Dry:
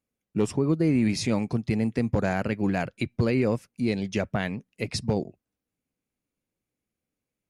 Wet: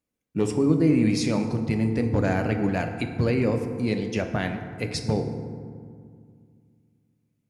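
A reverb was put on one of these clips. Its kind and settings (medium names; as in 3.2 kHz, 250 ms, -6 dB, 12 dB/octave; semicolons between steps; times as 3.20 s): FDN reverb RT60 2.1 s, low-frequency decay 1.4×, high-frequency decay 0.45×, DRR 5 dB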